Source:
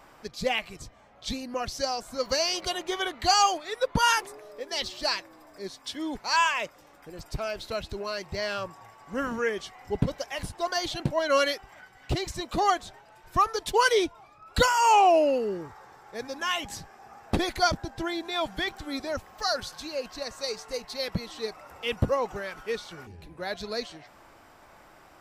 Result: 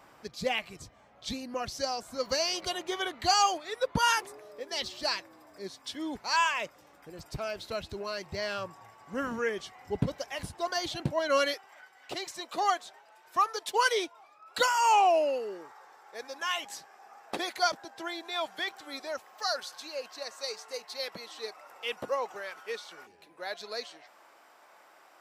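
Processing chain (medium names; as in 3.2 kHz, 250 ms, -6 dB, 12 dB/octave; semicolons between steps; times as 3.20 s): high-pass 64 Hz 12 dB/octave, from 11.54 s 480 Hz; trim -3 dB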